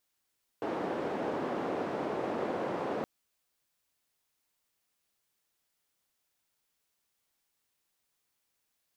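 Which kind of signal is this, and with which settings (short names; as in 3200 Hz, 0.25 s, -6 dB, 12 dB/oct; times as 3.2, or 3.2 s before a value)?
noise band 290–520 Hz, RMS -34 dBFS 2.42 s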